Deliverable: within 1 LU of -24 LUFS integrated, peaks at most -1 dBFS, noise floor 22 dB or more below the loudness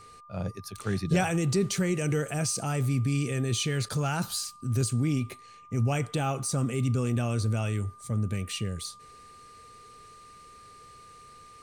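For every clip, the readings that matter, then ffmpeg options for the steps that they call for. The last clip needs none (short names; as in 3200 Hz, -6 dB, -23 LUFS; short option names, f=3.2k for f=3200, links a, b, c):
steady tone 1200 Hz; tone level -49 dBFS; loudness -29.0 LUFS; peak -14.0 dBFS; loudness target -24.0 LUFS
-> -af "bandreject=f=1.2k:w=30"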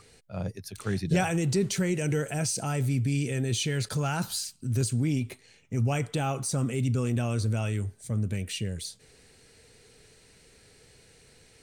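steady tone none; loudness -29.0 LUFS; peak -14.5 dBFS; loudness target -24.0 LUFS
-> -af "volume=5dB"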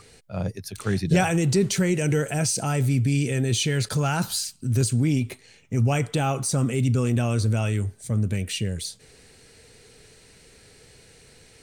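loudness -24.0 LUFS; peak -9.5 dBFS; noise floor -53 dBFS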